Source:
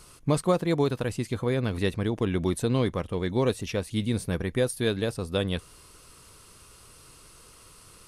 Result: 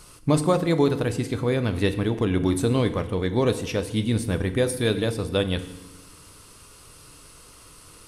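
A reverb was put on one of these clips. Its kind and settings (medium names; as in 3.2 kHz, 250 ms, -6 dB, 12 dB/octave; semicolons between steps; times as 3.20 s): FDN reverb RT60 1 s, low-frequency decay 1.45×, high-frequency decay 0.95×, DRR 9 dB; trim +3 dB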